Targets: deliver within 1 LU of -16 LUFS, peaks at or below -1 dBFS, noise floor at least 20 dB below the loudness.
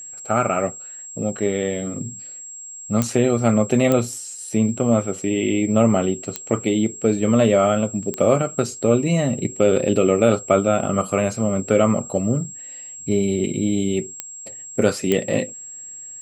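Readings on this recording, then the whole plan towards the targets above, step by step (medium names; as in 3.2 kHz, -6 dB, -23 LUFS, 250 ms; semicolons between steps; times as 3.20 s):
clicks found 6; steady tone 7.6 kHz; tone level -34 dBFS; loudness -20.5 LUFS; peak level -3.5 dBFS; loudness target -16.0 LUFS
-> de-click; band-stop 7.6 kHz, Q 30; trim +4.5 dB; peak limiter -1 dBFS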